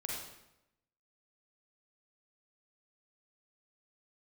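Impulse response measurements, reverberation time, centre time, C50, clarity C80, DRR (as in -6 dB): 0.90 s, 66 ms, -1.0 dB, 2.5 dB, -3.0 dB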